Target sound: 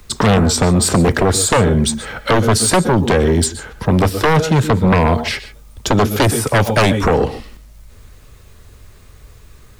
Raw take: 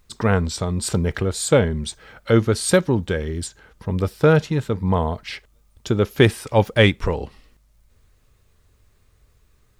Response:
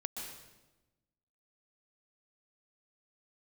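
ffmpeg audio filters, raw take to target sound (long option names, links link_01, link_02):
-filter_complex "[0:a]acrossover=split=84|170|1600|5400[link_01][link_02][link_03][link_04][link_05];[link_01]acompressor=threshold=-43dB:ratio=4[link_06];[link_02]acompressor=threshold=-30dB:ratio=4[link_07];[link_03]acompressor=threshold=-21dB:ratio=4[link_08];[link_04]acompressor=threshold=-42dB:ratio=4[link_09];[link_05]acompressor=threshold=-32dB:ratio=4[link_10];[link_06][link_07][link_08][link_09][link_10]amix=inputs=5:normalize=0,asplit=2[link_11][link_12];[1:a]atrim=start_sample=2205,atrim=end_sample=6615[link_13];[link_12][link_13]afir=irnorm=-1:irlink=0,volume=-4dB[link_14];[link_11][link_14]amix=inputs=2:normalize=0,aeval=exprs='0.75*sin(PI/2*5.01*val(0)/0.75)':channel_layout=same,volume=-5dB"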